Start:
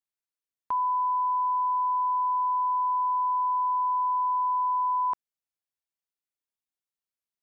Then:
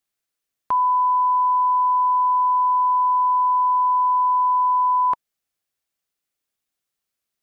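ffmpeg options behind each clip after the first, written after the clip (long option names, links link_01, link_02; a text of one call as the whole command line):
ffmpeg -i in.wav -af "bandreject=frequency=940:width=8.7,acontrast=33,volume=5dB" out.wav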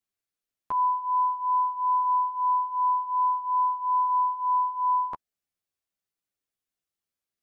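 ffmpeg -i in.wav -af "lowshelf=frequency=500:gain=4.5,flanger=delay=9.7:depth=2.8:regen=4:speed=0.49:shape=triangular,volume=-5dB" out.wav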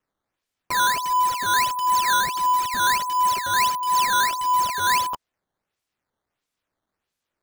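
ffmpeg -i in.wav -filter_complex "[0:a]asplit=2[link_01][link_02];[link_02]aeval=exprs='(mod(25.1*val(0)+1,2)-1)/25.1':channel_layout=same,volume=-7.5dB[link_03];[link_01][link_03]amix=inputs=2:normalize=0,acrusher=samples=10:mix=1:aa=0.000001:lfo=1:lforange=16:lforate=1.5,volume=3.5dB" out.wav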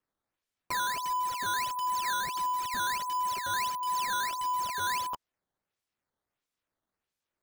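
ffmpeg -i in.wav -af "acompressor=threshold=-22dB:ratio=6,volume=-6.5dB" out.wav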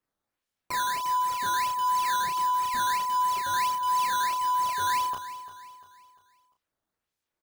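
ffmpeg -i in.wav -filter_complex "[0:a]asplit=2[link_01][link_02];[link_02]adelay=32,volume=-4.5dB[link_03];[link_01][link_03]amix=inputs=2:normalize=0,aecho=1:1:347|694|1041|1388:0.188|0.0791|0.0332|0.014" out.wav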